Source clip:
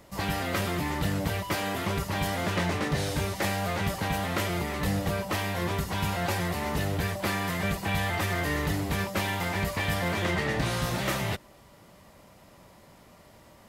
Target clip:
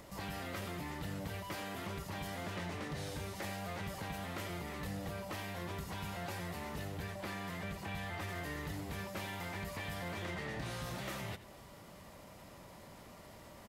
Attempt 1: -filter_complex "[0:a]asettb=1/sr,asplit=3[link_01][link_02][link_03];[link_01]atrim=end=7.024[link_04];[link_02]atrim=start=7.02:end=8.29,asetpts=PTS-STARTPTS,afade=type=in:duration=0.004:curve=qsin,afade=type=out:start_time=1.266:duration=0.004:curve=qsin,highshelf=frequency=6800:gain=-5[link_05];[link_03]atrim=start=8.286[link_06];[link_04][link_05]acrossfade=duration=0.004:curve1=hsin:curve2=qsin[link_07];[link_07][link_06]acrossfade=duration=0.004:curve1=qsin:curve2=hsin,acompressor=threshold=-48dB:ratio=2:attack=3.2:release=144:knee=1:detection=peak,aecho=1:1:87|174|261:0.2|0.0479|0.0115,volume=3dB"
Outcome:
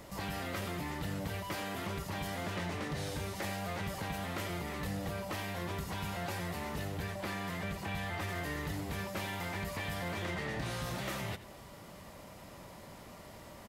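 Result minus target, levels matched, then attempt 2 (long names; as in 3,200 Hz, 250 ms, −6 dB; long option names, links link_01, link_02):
downward compressor: peak gain reduction −3.5 dB
-filter_complex "[0:a]asettb=1/sr,asplit=3[link_01][link_02][link_03];[link_01]atrim=end=7.024[link_04];[link_02]atrim=start=7.02:end=8.29,asetpts=PTS-STARTPTS,afade=type=in:duration=0.004:curve=qsin,afade=type=out:start_time=1.266:duration=0.004:curve=qsin,highshelf=frequency=6800:gain=-5[link_05];[link_03]atrim=start=8.286[link_06];[link_04][link_05]acrossfade=duration=0.004:curve1=hsin:curve2=qsin[link_07];[link_07][link_06]acrossfade=duration=0.004:curve1=qsin:curve2=hsin,acompressor=threshold=-55.5dB:ratio=2:attack=3.2:release=144:knee=1:detection=peak,aecho=1:1:87|174|261:0.2|0.0479|0.0115,volume=3dB"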